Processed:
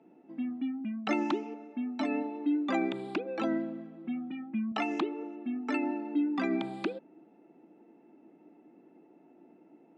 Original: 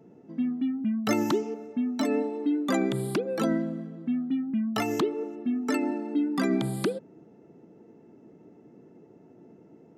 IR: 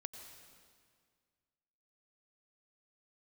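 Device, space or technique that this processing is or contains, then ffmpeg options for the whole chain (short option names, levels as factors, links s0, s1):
television speaker: -filter_complex "[0:a]bass=f=250:g=-6,treble=f=4000:g=-12,highpass=f=180:w=0.5412,highpass=f=180:w=1.3066,equalizer=f=310:t=q:w=4:g=6,equalizer=f=440:t=q:w=4:g=-7,equalizer=f=790:t=q:w=4:g=6,equalizer=f=2500:t=q:w=4:g=9,equalizer=f=3700:t=q:w=4:g=4,lowpass=f=7300:w=0.5412,lowpass=f=7300:w=1.3066,asettb=1/sr,asplit=3[s0][s1][s2];[s0]atrim=end=4.044[s3];[s1]atrim=start=4.04:end=4.72,asetpts=PTS-STARTPTS,afade=t=in:d=0.004:c=qsin,afade=t=out:st=0.676:d=0.004:c=qsin,aecho=1:1:5.4:0.88,atrim=end_sample=29988[s4];[s2]atrim=start=4.716[s5];[s3][s4]acrossfade=d=0.004:c1=hsin:c2=qsin[s6];[s6][s5]acrossfade=d=0.004:c1=qsin:c2=hsin,volume=0.596"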